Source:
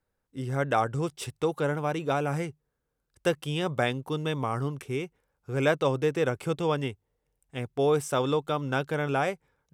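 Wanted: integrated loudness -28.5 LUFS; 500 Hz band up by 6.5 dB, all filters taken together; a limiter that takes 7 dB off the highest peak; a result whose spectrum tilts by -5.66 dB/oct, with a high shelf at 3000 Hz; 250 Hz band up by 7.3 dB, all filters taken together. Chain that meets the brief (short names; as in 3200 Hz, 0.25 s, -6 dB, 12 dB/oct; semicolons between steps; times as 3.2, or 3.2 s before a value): bell 250 Hz +8 dB; bell 500 Hz +5.5 dB; high shelf 3000 Hz -4 dB; gain -2 dB; limiter -17 dBFS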